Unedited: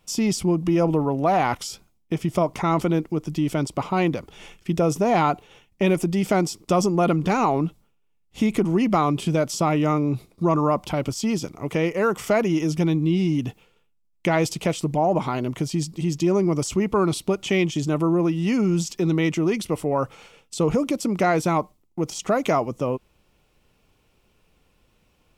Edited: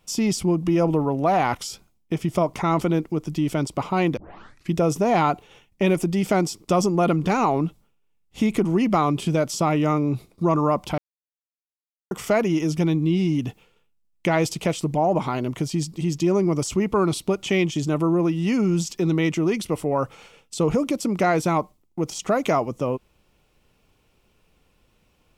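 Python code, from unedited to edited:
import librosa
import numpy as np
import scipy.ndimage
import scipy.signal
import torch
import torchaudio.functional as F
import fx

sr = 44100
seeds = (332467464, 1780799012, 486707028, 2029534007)

y = fx.edit(x, sr, fx.tape_start(start_s=4.17, length_s=0.54),
    fx.silence(start_s=10.98, length_s=1.13), tone=tone)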